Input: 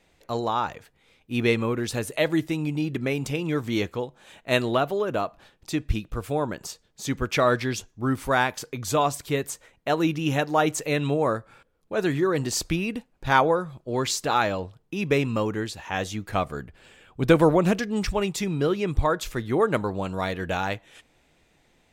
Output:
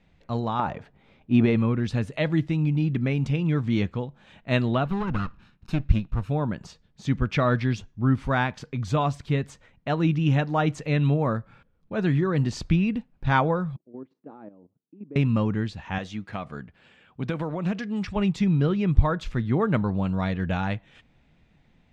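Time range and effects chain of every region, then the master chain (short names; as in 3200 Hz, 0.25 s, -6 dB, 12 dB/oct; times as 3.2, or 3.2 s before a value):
0.59–1.56 bell 540 Hz +12.5 dB 2.2 oct + notch 490 Hz, Q 6.5 + compressor 4:1, threshold -17 dBFS
4.85–6.3 minimum comb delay 0.75 ms + bell 12000 Hz +7 dB 0.49 oct
13.76–15.16 level quantiser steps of 13 dB + ladder band-pass 350 Hz, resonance 50%
15.98–18.16 HPF 360 Hz 6 dB/oct + compressor 2.5:1, threshold -27 dBFS
whole clip: LPF 3700 Hz 12 dB/oct; resonant low shelf 270 Hz +8 dB, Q 1.5; gain -2.5 dB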